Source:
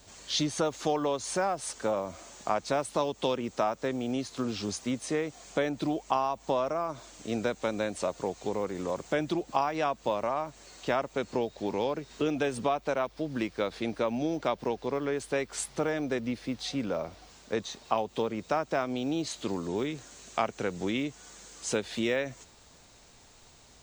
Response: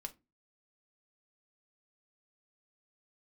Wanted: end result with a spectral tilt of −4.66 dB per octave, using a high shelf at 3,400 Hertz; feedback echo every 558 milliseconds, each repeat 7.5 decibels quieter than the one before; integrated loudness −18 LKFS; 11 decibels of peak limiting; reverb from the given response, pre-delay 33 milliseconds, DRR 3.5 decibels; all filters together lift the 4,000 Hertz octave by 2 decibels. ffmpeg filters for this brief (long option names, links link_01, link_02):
-filter_complex "[0:a]highshelf=frequency=3400:gain=-7,equalizer=frequency=4000:width_type=o:gain=7,alimiter=limit=-22dB:level=0:latency=1,aecho=1:1:558|1116|1674|2232|2790:0.422|0.177|0.0744|0.0312|0.0131,asplit=2[link_01][link_02];[1:a]atrim=start_sample=2205,adelay=33[link_03];[link_02][link_03]afir=irnorm=-1:irlink=0,volume=0dB[link_04];[link_01][link_04]amix=inputs=2:normalize=0,volume=14dB"